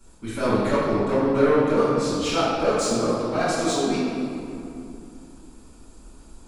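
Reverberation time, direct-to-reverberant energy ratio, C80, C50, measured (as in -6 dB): 2.7 s, -14.5 dB, -0.5 dB, -3.0 dB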